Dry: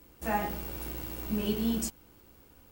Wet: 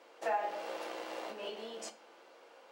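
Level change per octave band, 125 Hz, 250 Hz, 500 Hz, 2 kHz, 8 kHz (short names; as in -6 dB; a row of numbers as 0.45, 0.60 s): under -30 dB, -20.0 dB, -1.5 dB, -2.5 dB, -11.0 dB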